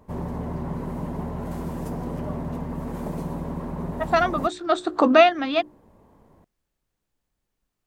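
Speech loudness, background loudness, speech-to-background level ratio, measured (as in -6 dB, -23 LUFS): -20.5 LUFS, -32.0 LUFS, 11.5 dB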